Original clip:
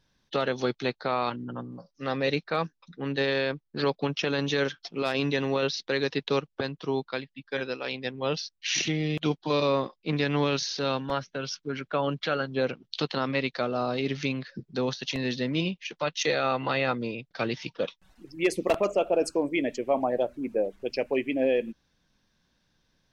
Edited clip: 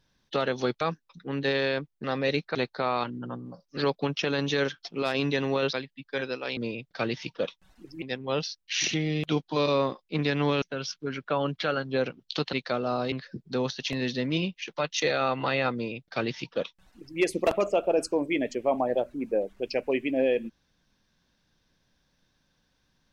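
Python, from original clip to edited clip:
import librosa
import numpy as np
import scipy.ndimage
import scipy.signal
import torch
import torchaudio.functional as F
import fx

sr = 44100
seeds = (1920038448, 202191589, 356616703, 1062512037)

y = fx.edit(x, sr, fx.swap(start_s=0.81, length_s=1.22, other_s=2.54, other_length_s=1.23),
    fx.cut(start_s=5.73, length_s=1.39),
    fx.cut(start_s=10.56, length_s=0.69),
    fx.cut(start_s=13.16, length_s=0.26),
    fx.cut(start_s=14.01, length_s=0.34),
    fx.duplicate(start_s=16.97, length_s=1.45, to_s=7.96), tone=tone)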